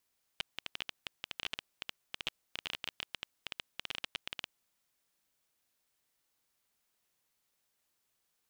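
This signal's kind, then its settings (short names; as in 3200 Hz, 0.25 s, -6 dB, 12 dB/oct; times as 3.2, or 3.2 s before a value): random clicks 14/s -19.5 dBFS 4.22 s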